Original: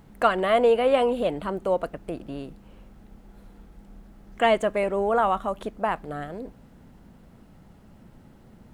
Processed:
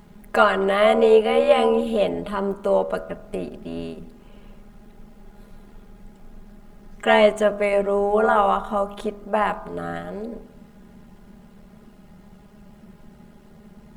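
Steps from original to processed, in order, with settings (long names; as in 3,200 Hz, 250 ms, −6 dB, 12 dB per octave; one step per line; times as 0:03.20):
hum removal 67.1 Hz, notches 23
time stretch by overlap-add 1.6×, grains 26 ms
level +5.5 dB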